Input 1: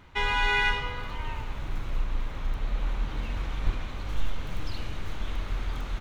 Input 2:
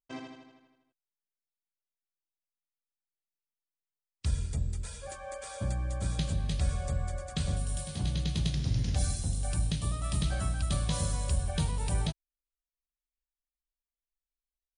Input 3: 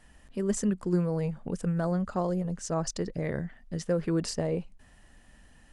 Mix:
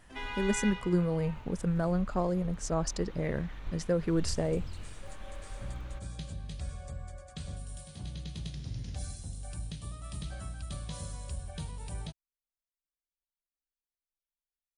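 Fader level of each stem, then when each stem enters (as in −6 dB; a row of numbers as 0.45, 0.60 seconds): −12.5, −9.5, −1.0 decibels; 0.00, 0.00, 0.00 seconds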